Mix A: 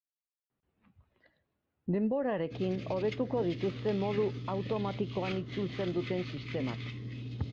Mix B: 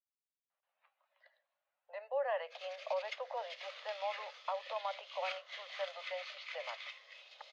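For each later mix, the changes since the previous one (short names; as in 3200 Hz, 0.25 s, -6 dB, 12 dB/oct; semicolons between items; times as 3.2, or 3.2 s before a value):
master: add steep high-pass 540 Hz 96 dB/oct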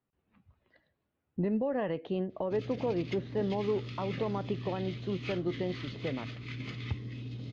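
speech: entry -0.50 s; master: remove steep high-pass 540 Hz 96 dB/oct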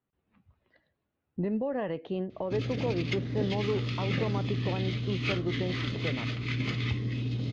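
background +9.0 dB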